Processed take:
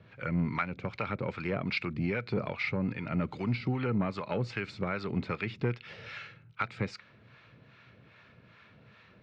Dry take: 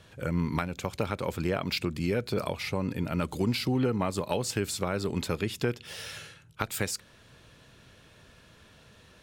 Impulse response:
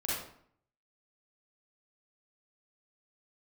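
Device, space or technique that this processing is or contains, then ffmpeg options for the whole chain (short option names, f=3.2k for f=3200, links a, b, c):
guitar amplifier with harmonic tremolo: -filter_complex "[0:a]acrossover=split=680[a][b];[a]aeval=exprs='val(0)*(1-0.7/2+0.7/2*cos(2*PI*2.5*n/s))':c=same[c];[b]aeval=exprs='val(0)*(1-0.7/2-0.7/2*cos(2*PI*2.5*n/s))':c=same[d];[c][d]amix=inputs=2:normalize=0,asoftclip=type=tanh:threshold=-21.5dB,highpass=90,equalizer=f=120:t=q:w=4:g=7,equalizer=f=200:t=q:w=4:g=4,equalizer=f=1.3k:t=q:w=4:g=5,equalizer=f=2.2k:t=q:w=4:g=8,equalizer=f=3.3k:t=q:w=4:g=-5,lowpass=f=4k:w=0.5412,lowpass=f=4k:w=1.3066"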